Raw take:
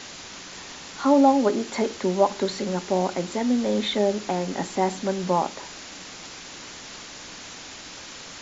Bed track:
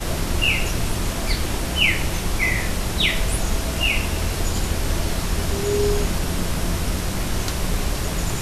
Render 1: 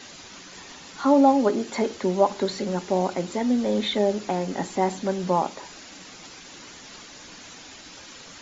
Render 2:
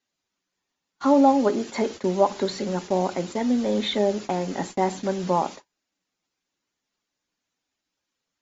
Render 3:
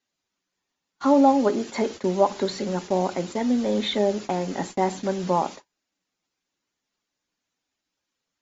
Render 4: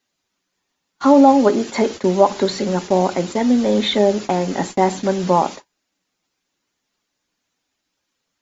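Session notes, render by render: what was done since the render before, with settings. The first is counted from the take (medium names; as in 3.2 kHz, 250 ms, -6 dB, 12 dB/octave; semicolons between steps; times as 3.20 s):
noise reduction 7 dB, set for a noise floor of -41 dBFS
gate -34 dBFS, range -39 dB
no audible change
trim +7 dB; peak limiter -1 dBFS, peak gain reduction 1.5 dB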